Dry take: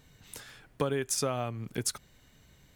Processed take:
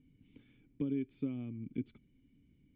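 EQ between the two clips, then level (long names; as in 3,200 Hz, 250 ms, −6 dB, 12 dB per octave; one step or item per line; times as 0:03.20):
formant resonators in series i
parametric band 660 Hz −7.5 dB 0.46 octaves
parametric band 3,100 Hz −10 dB 0.79 octaves
+4.0 dB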